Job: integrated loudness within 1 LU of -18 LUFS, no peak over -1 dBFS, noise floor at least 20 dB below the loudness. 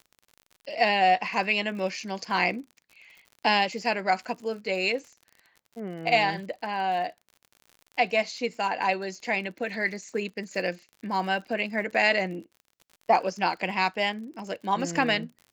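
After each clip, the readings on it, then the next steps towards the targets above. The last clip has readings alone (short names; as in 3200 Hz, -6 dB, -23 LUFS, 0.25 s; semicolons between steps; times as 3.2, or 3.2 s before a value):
ticks 51/s; loudness -27.0 LUFS; peak -8.5 dBFS; loudness target -18.0 LUFS
-> de-click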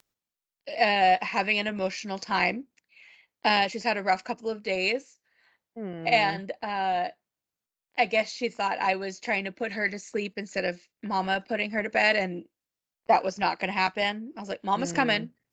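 ticks 0.19/s; loudness -27.0 LUFS; peak -8.5 dBFS; loudness target -18.0 LUFS
-> gain +9 dB; limiter -1 dBFS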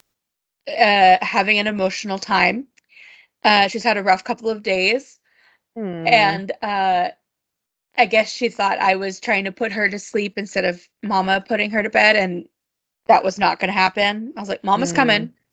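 loudness -18.0 LUFS; peak -1.0 dBFS; noise floor -81 dBFS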